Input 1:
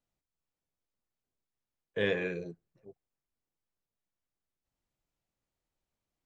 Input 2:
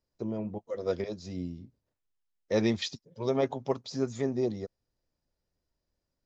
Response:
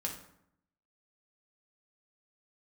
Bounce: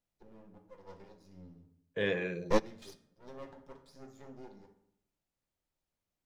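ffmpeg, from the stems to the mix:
-filter_complex "[0:a]volume=-3.5dB,asplit=3[a][b][c];[b]volume=-13.5dB[d];[1:a]acontrast=89,aeval=exprs='max(val(0),0)':c=same,volume=-2.5dB,asplit=2[e][f];[f]volume=-23.5dB[g];[c]apad=whole_len=275968[h];[e][h]sidechaingate=range=-33dB:threshold=-52dB:ratio=16:detection=peak[i];[2:a]atrim=start_sample=2205[j];[d][g]amix=inputs=2:normalize=0[k];[k][j]afir=irnorm=-1:irlink=0[l];[a][i][l]amix=inputs=3:normalize=0"

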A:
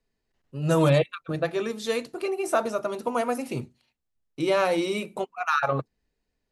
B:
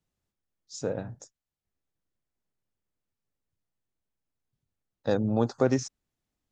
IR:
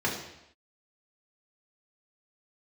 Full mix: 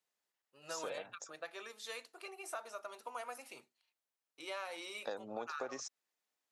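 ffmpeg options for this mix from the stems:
-filter_complex "[0:a]highpass=860,volume=-11dB[a];[1:a]highpass=600,volume=-0.5dB[b];[a][b]amix=inputs=2:normalize=0,acompressor=threshold=-39dB:ratio=5"

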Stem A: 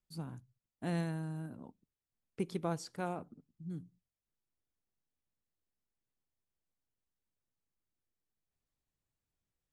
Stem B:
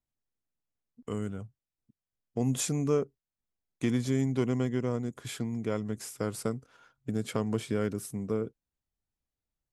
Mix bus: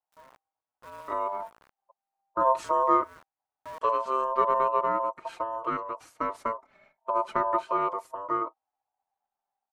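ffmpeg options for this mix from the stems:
-filter_complex "[0:a]acrusher=bits=6:mix=0:aa=0.000001,volume=-7dB,afade=t=in:st=3.37:d=0.26:silence=0.354813[a];[1:a]lowpass=f=1.4k:p=1,asplit=2[b][c];[c]adelay=4.2,afreqshift=0.37[d];[b][d]amix=inputs=2:normalize=1,volume=0dB,asplit=2[e][f];[f]apad=whole_len=429011[g];[a][g]sidechaincompress=threshold=-40dB:ratio=8:attack=16:release=146[h];[h][e]amix=inputs=2:normalize=0,aeval=exprs='val(0)*sin(2*PI*790*n/s)':c=same,dynaudnorm=f=110:g=5:m=4.5dB,equalizer=f=1.2k:t=o:w=1.6:g=6.5"

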